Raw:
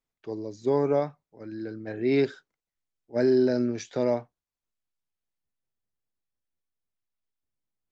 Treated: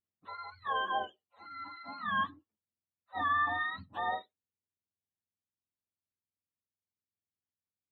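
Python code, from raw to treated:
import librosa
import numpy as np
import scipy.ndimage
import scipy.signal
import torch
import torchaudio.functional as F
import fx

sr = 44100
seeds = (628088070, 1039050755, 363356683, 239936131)

y = fx.octave_mirror(x, sr, pivot_hz=670.0)
y = fx.peak_eq(y, sr, hz=120.0, db=-14.5, octaves=0.78)
y = y * librosa.db_to_amplitude(-7.0)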